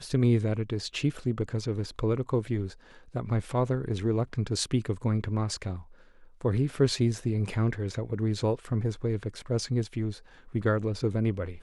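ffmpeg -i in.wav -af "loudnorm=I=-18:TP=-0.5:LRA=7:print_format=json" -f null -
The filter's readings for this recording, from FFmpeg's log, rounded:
"input_i" : "-29.7",
"input_tp" : "-11.5",
"input_lra" : "1.1",
"input_thresh" : "-39.9",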